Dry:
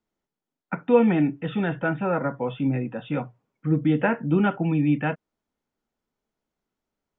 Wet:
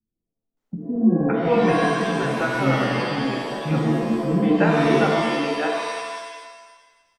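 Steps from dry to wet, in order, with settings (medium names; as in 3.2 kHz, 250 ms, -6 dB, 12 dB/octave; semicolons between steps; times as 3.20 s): bass shelf 160 Hz +3.5 dB; bands offset in time lows, highs 570 ms, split 300 Hz; pitch-shifted reverb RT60 1.3 s, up +7 st, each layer -2 dB, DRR 1 dB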